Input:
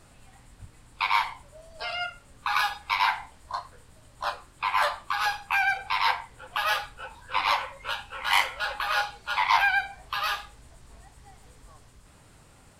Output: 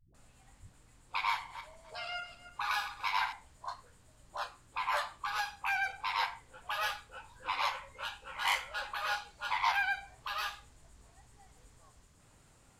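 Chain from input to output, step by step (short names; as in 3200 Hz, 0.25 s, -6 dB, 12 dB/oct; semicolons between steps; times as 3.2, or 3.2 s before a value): 1.17–3.18 regenerating reverse delay 0.148 s, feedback 44%, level -11 dB; bell 6900 Hz +5.5 dB 0.37 oct; dispersion highs, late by 0.146 s, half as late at 300 Hz; gain -8.5 dB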